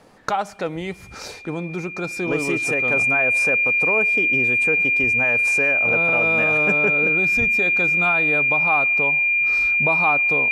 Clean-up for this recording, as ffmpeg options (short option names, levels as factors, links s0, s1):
-af "bandreject=f=2400:w=30"